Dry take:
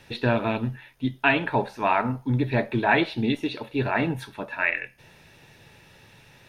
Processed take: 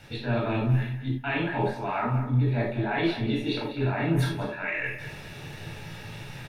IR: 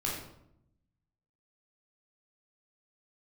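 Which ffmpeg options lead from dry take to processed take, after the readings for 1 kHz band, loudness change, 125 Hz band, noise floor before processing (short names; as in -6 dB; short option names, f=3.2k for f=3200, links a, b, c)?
-6.0 dB, -2.5 dB, +3.5 dB, -54 dBFS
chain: -filter_complex "[0:a]areverse,acompressor=threshold=-37dB:ratio=6,areverse,asplit=2[a][b];[b]adelay=196,lowpass=f=3.1k:p=1,volume=-10dB,asplit=2[c][d];[d]adelay=196,lowpass=f=3.1k:p=1,volume=0.19,asplit=2[e][f];[f]adelay=196,lowpass=f=3.1k:p=1,volume=0.19[g];[a][c][e][g]amix=inputs=4:normalize=0[h];[1:a]atrim=start_sample=2205,atrim=end_sample=4410[i];[h][i]afir=irnorm=-1:irlink=0,volume=5.5dB"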